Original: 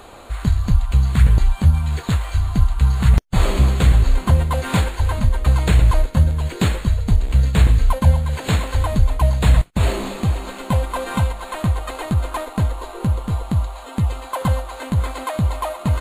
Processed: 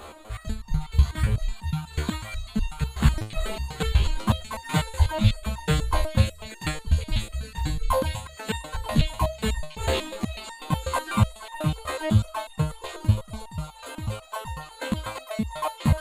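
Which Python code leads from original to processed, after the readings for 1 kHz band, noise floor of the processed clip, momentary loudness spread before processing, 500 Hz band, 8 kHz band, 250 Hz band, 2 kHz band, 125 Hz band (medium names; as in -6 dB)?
-4.5 dB, -46 dBFS, 8 LU, -4.0 dB, -3.5 dB, -5.5 dB, -4.0 dB, -8.5 dB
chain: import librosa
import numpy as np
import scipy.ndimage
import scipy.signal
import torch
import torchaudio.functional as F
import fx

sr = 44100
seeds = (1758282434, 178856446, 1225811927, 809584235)

y = fx.dereverb_blind(x, sr, rt60_s=0.9)
y = fx.echo_stepped(y, sr, ms=506, hz=3500.0, octaves=0.7, feedback_pct=70, wet_db=-0.5)
y = fx.resonator_held(y, sr, hz=8.1, low_hz=75.0, high_hz=910.0)
y = y * 10.0 ** (9.0 / 20.0)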